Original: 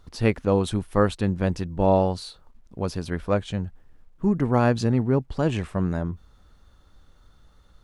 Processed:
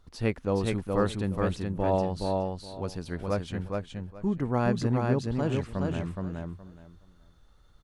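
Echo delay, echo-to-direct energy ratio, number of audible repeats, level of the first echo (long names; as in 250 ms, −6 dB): 420 ms, −3.0 dB, 3, −3.0 dB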